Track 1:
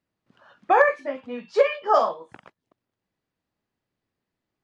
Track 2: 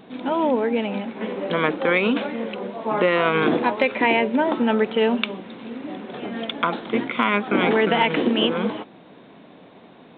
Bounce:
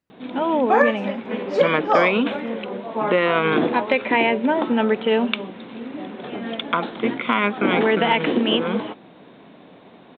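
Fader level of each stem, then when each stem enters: 0.0 dB, +0.5 dB; 0.00 s, 0.10 s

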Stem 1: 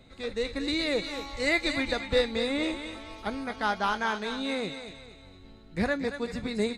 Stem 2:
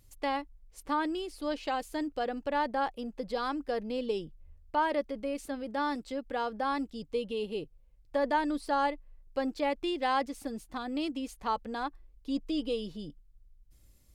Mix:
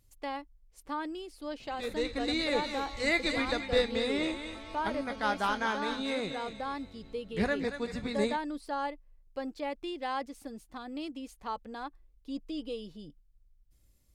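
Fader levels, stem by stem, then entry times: -2.5 dB, -5.5 dB; 1.60 s, 0.00 s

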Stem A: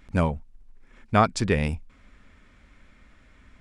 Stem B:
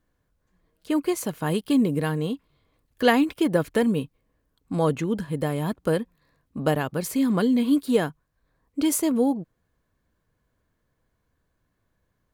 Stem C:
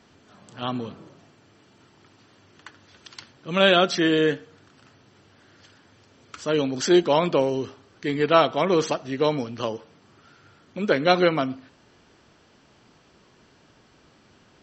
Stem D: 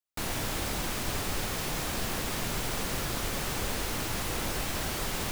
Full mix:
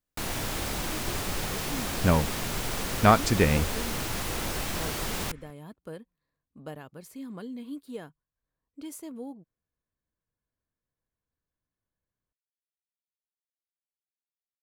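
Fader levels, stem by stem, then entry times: +0.5 dB, -18.0 dB, mute, +0.5 dB; 1.90 s, 0.00 s, mute, 0.00 s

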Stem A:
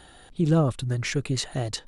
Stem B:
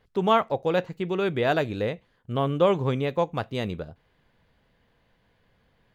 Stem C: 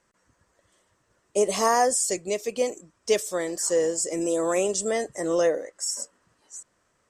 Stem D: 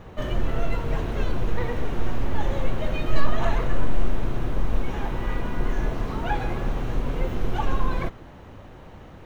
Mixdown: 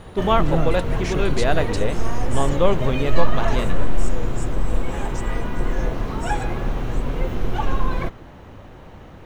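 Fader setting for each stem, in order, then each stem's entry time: -3.0 dB, +1.5 dB, -14.0 dB, +2.5 dB; 0.00 s, 0.00 s, 0.40 s, 0.00 s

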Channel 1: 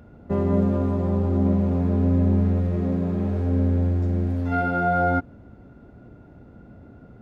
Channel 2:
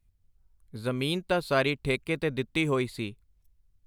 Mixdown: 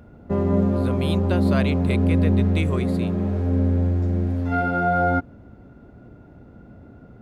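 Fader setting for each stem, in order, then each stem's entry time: +1.0 dB, -2.0 dB; 0.00 s, 0.00 s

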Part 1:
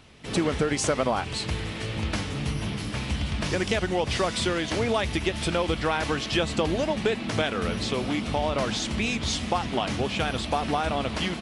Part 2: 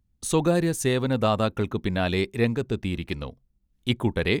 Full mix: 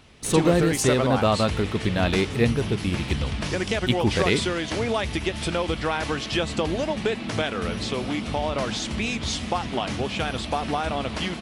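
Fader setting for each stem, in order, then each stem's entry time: 0.0 dB, +1.5 dB; 0.00 s, 0.00 s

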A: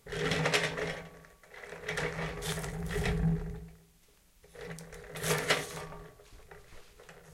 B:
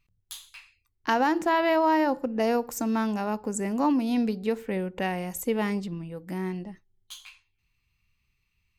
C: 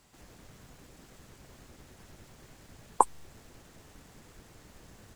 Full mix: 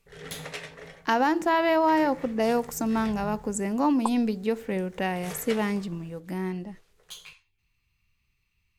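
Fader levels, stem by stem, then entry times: -9.5 dB, +0.5 dB, -6.5 dB; 0.00 s, 0.00 s, 1.05 s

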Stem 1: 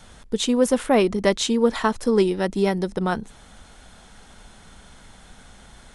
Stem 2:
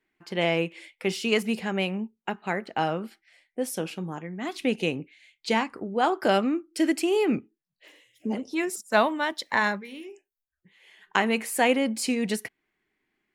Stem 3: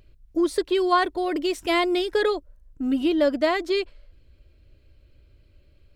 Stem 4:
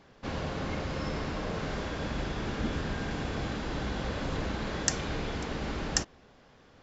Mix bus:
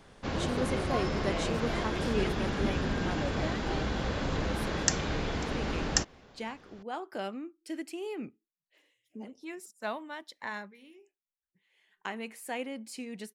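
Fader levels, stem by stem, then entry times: -15.5 dB, -14.5 dB, -18.0 dB, +1.5 dB; 0.00 s, 0.90 s, 0.00 s, 0.00 s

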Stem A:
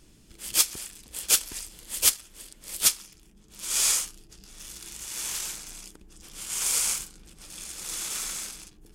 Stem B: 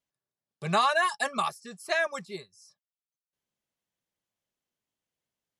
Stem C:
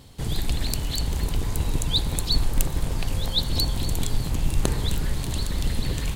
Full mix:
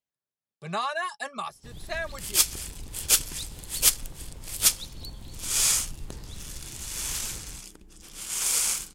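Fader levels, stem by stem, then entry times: +0.5 dB, -5.5 dB, -17.0 dB; 1.80 s, 0.00 s, 1.45 s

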